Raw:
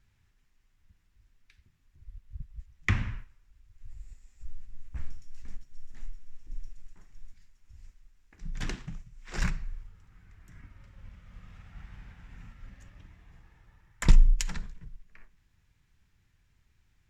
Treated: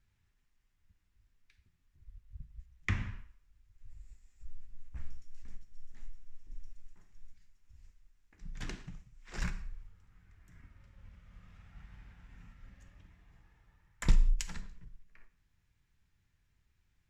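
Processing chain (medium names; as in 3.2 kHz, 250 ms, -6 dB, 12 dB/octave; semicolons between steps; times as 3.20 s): gated-style reverb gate 210 ms falling, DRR 11 dB; trim -6.5 dB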